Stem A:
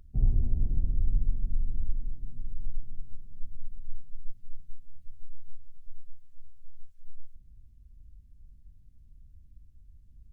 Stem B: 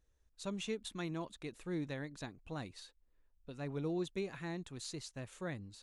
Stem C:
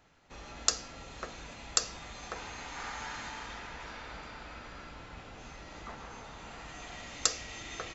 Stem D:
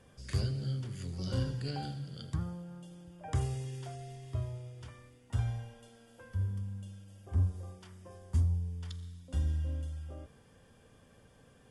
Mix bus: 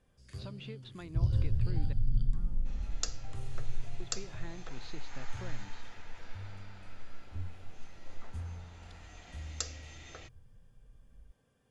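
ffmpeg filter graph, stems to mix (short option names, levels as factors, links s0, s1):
-filter_complex "[0:a]equalizer=f=120:w=1.5:g=10.5,asplit=2[s0][s1];[s1]afreqshift=0.47[s2];[s0][s2]amix=inputs=2:normalize=1,adelay=1000,volume=0.75[s3];[1:a]lowpass=f=3900:w=0.5412,lowpass=f=3900:w=1.3066,acompressor=threshold=0.00447:ratio=4,volume=1.26,asplit=3[s4][s5][s6];[s4]atrim=end=1.93,asetpts=PTS-STARTPTS,afade=t=out:st=1.926:d=0.004:c=hsin[s7];[s5]atrim=start=1.93:end=4,asetpts=PTS-STARTPTS,volume=0[s8];[s6]atrim=start=4,asetpts=PTS-STARTPTS,afade=t=in:d=0.004:c=hsin[s9];[s7][s8][s9]concat=n=3:v=0:a=1[s10];[2:a]equalizer=f=1100:w=3.4:g=-5,adelay=2350,volume=0.355[s11];[3:a]volume=0.237[s12];[s3][s10][s11][s12]amix=inputs=4:normalize=0"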